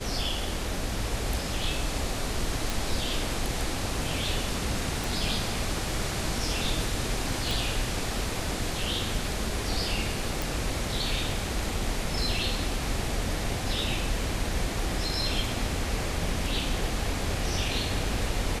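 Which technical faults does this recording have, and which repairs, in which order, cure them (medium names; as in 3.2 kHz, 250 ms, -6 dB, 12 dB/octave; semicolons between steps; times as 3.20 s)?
2.70 s: pop
5.04 s: pop
7.51 s: pop
10.42 s: pop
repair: de-click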